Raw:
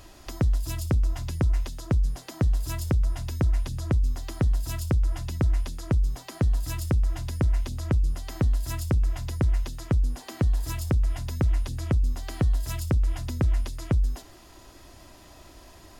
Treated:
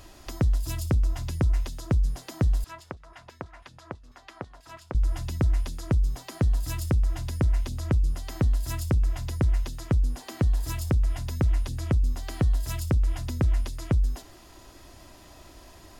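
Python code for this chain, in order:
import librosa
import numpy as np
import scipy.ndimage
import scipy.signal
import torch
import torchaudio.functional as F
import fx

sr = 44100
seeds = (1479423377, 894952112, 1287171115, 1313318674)

y = fx.filter_lfo_bandpass(x, sr, shape='saw_down', hz=6.1, low_hz=800.0, high_hz=2000.0, q=1.1, at=(2.64, 4.95))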